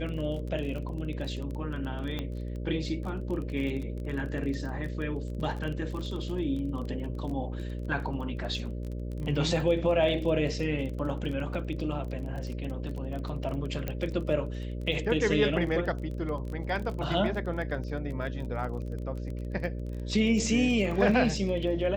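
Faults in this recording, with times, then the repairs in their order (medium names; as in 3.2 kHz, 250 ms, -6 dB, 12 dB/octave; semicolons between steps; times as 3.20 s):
buzz 60 Hz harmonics 10 -35 dBFS
crackle 22 per s -35 dBFS
2.19 s: pop -20 dBFS
13.88 s: pop -18 dBFS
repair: de-click; de-hum 60 Hz, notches 10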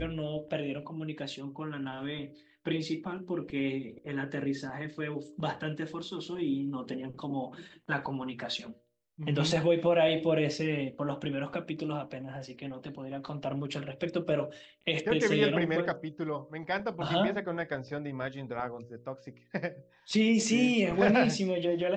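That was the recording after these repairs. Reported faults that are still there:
nothing left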